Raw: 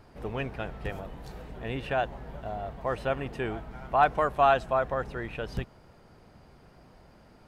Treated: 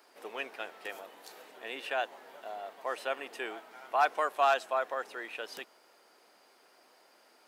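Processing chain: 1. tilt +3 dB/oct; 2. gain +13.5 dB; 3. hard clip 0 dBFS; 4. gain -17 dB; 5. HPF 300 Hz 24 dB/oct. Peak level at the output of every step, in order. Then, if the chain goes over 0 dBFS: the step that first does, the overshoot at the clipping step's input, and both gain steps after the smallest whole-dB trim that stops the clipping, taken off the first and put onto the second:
-8.5, +5.0, 0.0, -17.0, -14.0 dBFS; step 2, 5.0 dB; step 2 +8.5 dB, step 4 -12 dB

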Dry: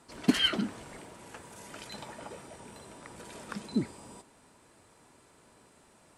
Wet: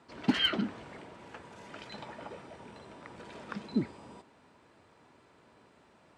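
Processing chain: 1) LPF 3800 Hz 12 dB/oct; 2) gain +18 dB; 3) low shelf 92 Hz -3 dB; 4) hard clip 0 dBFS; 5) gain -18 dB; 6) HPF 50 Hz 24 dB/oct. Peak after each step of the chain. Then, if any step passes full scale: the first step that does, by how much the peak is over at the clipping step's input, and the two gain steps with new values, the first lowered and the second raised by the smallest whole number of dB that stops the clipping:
-9.5, +8.5, +8.0, 0.0, -18.0, -14.5 dBFS; step 2, 8.0 dB; step 2 +10 dB, step 5 -10 dB

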